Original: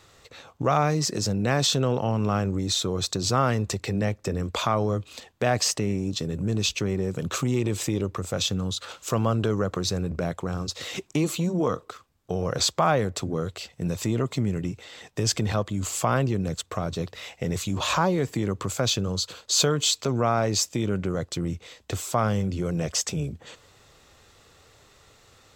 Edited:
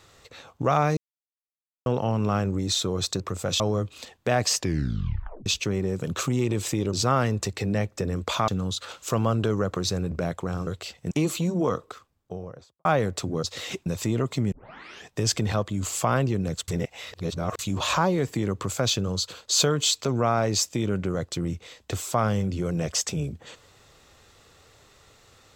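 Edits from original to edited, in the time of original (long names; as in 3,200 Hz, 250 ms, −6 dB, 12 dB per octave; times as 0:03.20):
0:00.97–0:01.86: silence
0:03.20–0:04.75: swap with 0:08.08–0:08.48
0:05.70: tape stop 0.91 s
0:10.67–0:11.10: swap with 0:13.42–0:13.86
0:11.76–0:12.84: fade out and dull
0:14.52: tape start 0.55 s
0:16.68–0:17.59: reverse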